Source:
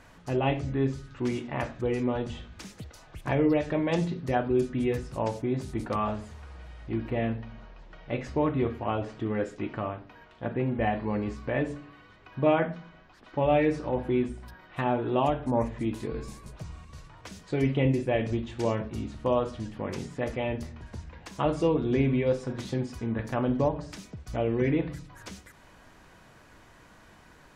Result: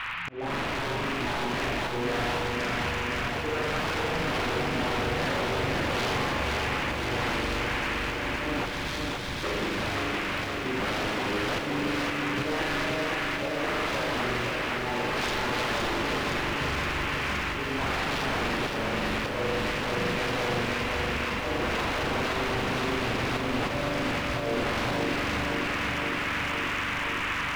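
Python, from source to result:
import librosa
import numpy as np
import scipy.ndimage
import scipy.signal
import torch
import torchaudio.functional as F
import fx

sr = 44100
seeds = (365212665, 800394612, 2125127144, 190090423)

p1 = fx.envelope_sharpen(x, sr, power=2.0)
p2 = p1 + fx.room_flutter(p1, sr, wall_m=7.1, rt60_s=1.4, dry=0)
p3 = fx.dmg_noise_band(p2, sr, seeds[0], low_hz=940.0, high_hz=2800.0, level_db=-36.0)
p4 = fx.auto_swell(p3, sr, attack_ms=408.0)
p5 = fx.rider(p4, sr, range_db=4, speed_s=2.0)
p6 = p4 + F.gain(torch.from_numpy(p5), -3.0).numpy()
p7 = 10.0 ** (-22.5 / 20.0) * (np.abs((p6 / 10.0 ** (-22.5 / 20.0) + 3.0) % 4.0 - 2.0) - 1.0)
p8 = fx.spec_erase(p7, sr, start_s=8.66, length_s=0.77, low_hz=200.0, high_hz=3100.0)
p9 = fx.echo_crushed(p8, sr, ms=517, feedback_pct=80, bits=9, wet_db=-3.5)
y = F.gain(torch.from_numpy(p9), -3.5).numpy()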